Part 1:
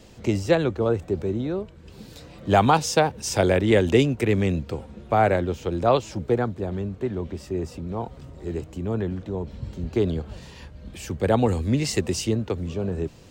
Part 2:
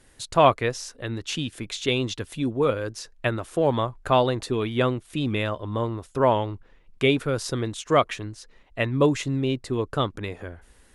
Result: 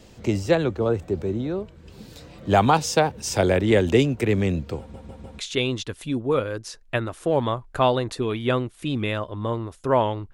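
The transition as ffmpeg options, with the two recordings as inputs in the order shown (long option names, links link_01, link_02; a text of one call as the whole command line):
ffmpeg -i cue0.wav -i cue1.wav -filter_complex "[0:a]apad=whole_dur=10.33,atrim=end=10.33,asplit=4[link_01][link_02][link_03][link_04];[link_01]atrim=end=4.942[link_05];[link_02]atrim=start=4.788:end=4.942[link_06];[link_03]atrim=start=4.788:end=4.942[link_07];[link_04]atrim=start=4.788:end=4.942[link_08];[1:a]atrim=start=1.698:end=6.64[link_09];[link_05][link_06]acrossfade=duration=0.004:curve1=hsin:curve2=hsin[link_10];[link_10][link_07]acrossfade=duration=0.004:curve1=hsin:curve2=hsin[link_11];[link_11][link_08]acrossfade=duration=0.004:curve1=hsin:curve2=hsin[link_12];[link_12][link_09]acrossfade=duration=0.004:curve1=hsin:curve2=hsin" out.wav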